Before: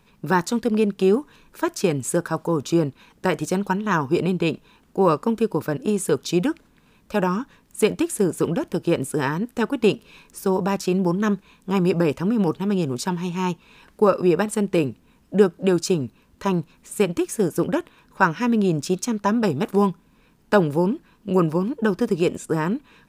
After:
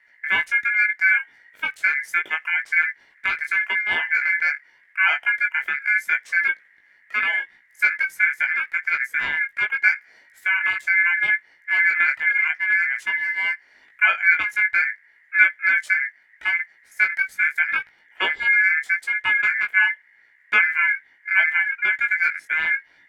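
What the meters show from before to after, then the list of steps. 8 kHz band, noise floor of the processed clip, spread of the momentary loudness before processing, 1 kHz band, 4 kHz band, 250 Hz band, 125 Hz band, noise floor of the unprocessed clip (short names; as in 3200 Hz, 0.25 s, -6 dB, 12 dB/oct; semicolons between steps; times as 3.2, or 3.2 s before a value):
under -15 dB, -57 dBFS, 7 LU, -4.5 dB, +1.0 dB, under -30 dB, under -30 dB, -58 dBFS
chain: tilt shelf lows +9 dB, about 770 Hz; ring modulator 1900 Hz; chorus 0.78 Hz, delay 17.5 ms, depth 3.2 ms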